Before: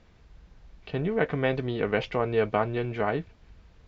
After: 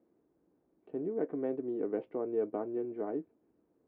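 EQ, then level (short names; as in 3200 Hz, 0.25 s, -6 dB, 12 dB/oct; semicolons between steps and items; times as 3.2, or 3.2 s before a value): ladder band-pass 350 Hz, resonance 60%; +2.5 dB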